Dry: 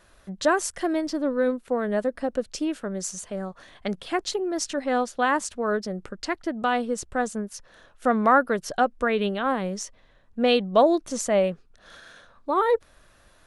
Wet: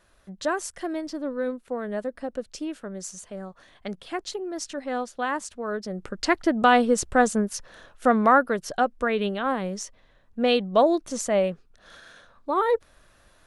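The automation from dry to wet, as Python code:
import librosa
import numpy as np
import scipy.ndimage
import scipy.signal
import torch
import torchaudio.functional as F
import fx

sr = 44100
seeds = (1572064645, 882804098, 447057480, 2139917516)

y = fx.gain(x, sr, db=fx.line((5.73, -5.0), (6.31, 6.5), (7.5, 6.5), (8.55, -1.0)))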